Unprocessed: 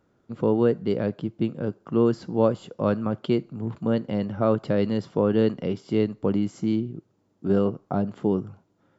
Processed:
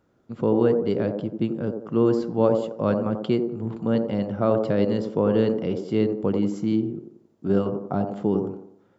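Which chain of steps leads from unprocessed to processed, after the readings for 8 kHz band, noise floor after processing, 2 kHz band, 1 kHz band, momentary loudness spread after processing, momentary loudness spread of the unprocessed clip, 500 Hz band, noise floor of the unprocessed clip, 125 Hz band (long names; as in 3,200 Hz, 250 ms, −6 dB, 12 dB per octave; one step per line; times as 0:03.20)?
can't be measured, −63 dBFS, 0.0 dB, +1.0 dB, 7 LU, 7 LU, +2.0 dB, −68 dBFS, 0.0 dB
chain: delay with a band-pass on its return 89 ms, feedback 41%, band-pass 460 Hz, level −3 dB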